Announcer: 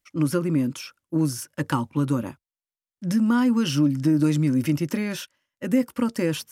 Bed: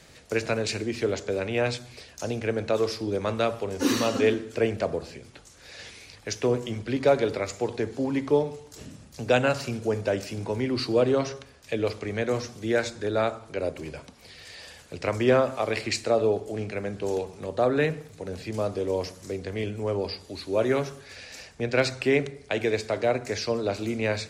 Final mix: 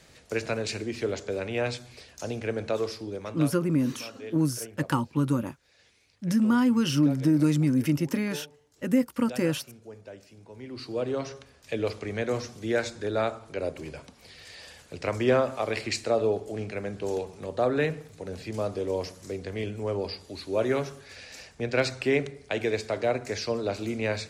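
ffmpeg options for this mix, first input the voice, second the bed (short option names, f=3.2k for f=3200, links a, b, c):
-filter_complex "[0:a]adelay=3200,volume=-2dB[a];[1:a]volume=13.5dB,afade=t=out:st=2.68:d=0.92:silence=0.16788,afade=t=in:st=10.5:d=1.27:silence=0.149624[b];[a][b]amix=inputs=2:normalize=0"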